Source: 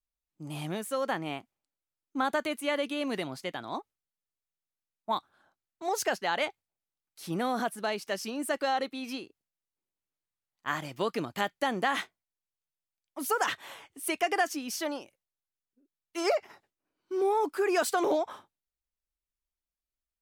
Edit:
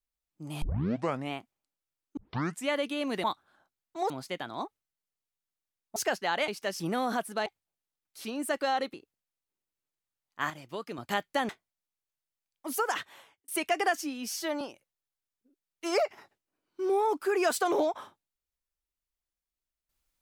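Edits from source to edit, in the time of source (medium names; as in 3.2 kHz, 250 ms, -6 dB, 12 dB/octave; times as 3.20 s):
0.62 s: tape start 0.69 s
2.17 s: tape start 0.51 s
5.10–5.96 s: move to 3.24 s
6.48–7.27 s: swap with 7.93–8.25 s
8.94–9.21 s: delete
10.77–11.25 s: gain -7.5 dB
11.76–12.01 s: delete
13.24–14.00 s: fade out
14.53–14.93 s: stretch 1.5×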